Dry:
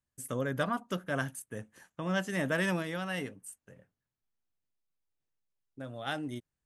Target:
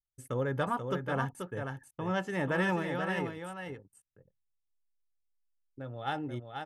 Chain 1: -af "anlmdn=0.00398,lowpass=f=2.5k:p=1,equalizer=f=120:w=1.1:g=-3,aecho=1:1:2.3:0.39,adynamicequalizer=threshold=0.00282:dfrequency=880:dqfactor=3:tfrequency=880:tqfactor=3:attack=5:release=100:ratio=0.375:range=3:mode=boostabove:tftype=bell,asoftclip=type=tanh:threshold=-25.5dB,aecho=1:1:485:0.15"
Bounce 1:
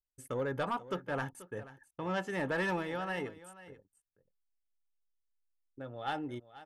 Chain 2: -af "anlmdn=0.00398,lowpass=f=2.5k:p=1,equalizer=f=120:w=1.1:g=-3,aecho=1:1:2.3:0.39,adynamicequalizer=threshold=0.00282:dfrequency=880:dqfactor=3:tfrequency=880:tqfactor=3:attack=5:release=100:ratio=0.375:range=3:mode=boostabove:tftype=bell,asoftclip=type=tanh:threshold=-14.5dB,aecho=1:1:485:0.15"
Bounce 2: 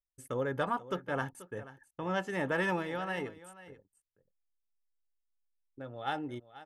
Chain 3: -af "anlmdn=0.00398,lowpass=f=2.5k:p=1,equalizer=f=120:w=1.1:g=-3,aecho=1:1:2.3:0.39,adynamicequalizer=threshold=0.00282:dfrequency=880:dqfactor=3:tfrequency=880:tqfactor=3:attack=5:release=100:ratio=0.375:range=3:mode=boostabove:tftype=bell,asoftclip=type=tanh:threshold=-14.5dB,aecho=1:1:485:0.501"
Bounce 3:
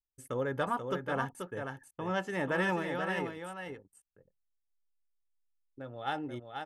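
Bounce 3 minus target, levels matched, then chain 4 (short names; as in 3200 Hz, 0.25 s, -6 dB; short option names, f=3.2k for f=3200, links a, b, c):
125 Hz band -4.0 dB
-af "anlmdn=0.00398,lowpass=f=2.5k:p=1,equalizer=f=120:w=1.1:g=3.5,aecho=1:1:2.3:0.39,adynamicequalizer=threshold=0.00282:dfrequency=880:dqfactor=3:tfrequency=880:tqfactor=3:attack=5:release=100:ratio=0.375:range=3:mode=boostabove:tftype=bell,asoftclip=type=tanh:threshold=-14.5dB,aecho=1:1:485:0.501"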